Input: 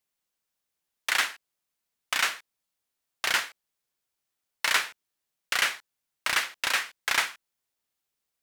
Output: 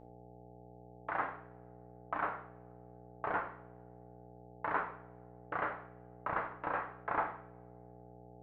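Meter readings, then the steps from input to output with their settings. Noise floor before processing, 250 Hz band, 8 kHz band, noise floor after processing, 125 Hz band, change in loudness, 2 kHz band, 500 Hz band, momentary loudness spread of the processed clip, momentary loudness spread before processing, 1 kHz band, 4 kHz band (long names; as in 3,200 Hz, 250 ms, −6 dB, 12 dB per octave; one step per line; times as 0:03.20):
−84 dBFS, +4.5 dB, below −40 dB, −56 dBFS, can't be measured, −12.0 dB, −14.5 dB, +2.5 dB, 19 LU, 10 LU, −2.0 dB, below −35 dB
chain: low-pass filter 1,100 Hz 24 dB per octave
hum with harmonics 60 Hz, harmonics 14, −57 dBFS −1 dB per octave
coupled-rooms reverb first 0.52 s, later 1.8 s, from −24 dB, DRR 3 dB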